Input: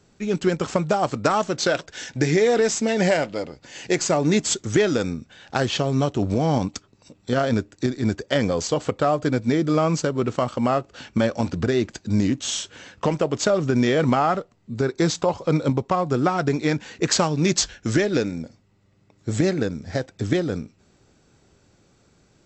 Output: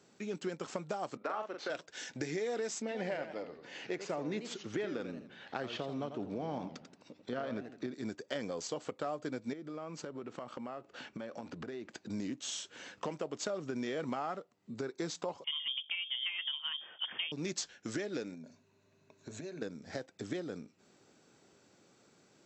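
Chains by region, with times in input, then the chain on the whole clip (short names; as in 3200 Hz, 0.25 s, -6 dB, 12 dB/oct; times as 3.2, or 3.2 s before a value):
1.17–1.7 BPF 250–2400 Hz + low shelf 340 Hz -8 dB + doubler 42 ms -5 dB
2.82–7.94 LPF 3400 Hz + warbling echo 85 ms, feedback 34%, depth 215 cents, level -10.5 dB
9.53–12.1 tone controls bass -1 dB, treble -8 dB + compressor 5:1, threshold -28 dBFS
15.44–17.32 high shelf 2600 Hz -8 dB + notches 50/100/150/200/250/300 Hz + inverted band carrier 3400 Hz
18.34–19.62 ripple EQ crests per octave 1.5, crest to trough 10 dB + compressor 5:1, threshold -32 dBFS
whole clip: HPF 210 Hz 12 dB/oct; compressor 2:1, threshold -41 dBFS; gain -4 dB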